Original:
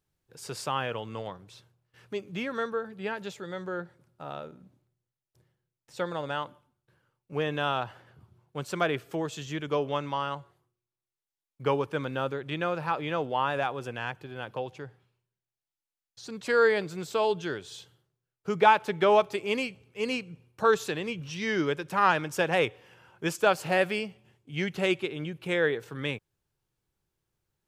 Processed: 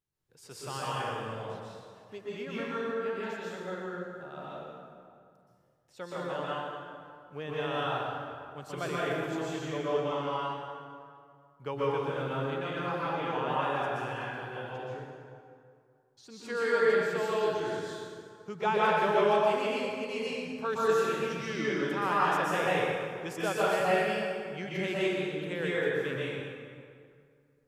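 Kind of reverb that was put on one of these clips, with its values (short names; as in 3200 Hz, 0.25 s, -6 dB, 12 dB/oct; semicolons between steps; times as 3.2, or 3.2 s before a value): plate-style reverb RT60 2.2 s, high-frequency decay 0.65×, pre-delay 0.11 s, DRR -8 dB; gain -10.5 dB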